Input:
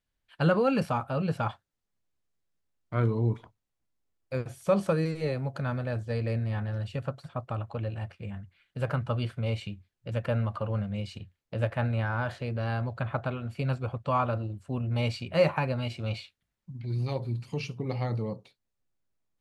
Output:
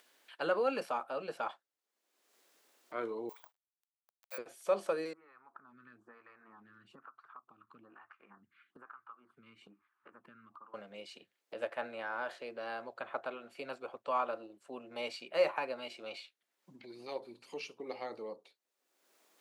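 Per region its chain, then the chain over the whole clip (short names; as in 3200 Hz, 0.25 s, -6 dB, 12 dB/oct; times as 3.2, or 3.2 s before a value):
3.29–4.38 CVSD 64 kbps + HPF 700 Hz 24 dB/oct + careless resampling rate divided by 2×, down filtered, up zero stuff
5.13–10.74 EQ curve 130 Hz 0 dB, 300 Hz -5 dB, 560 Hz -26 dB, 810 Hz -9 dB, 1200 Hz +7 dB, 2000 Hz -9 dB, 4500 Hz -23 dB + compressor 3:1, threshold -43 dBFS + photocell phaser 1.1 Hz
whole clip: HPF 330 Hz 24 dB/oct; upward compressor, threshold -42 dBFS; gain -5.5 dB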